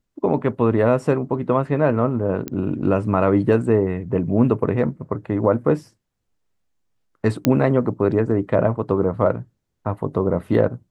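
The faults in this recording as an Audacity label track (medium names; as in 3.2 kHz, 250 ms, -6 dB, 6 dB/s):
2.480000	2.480000	pop -13 dBFS
7.450000	7.450000	pop -3 dBFS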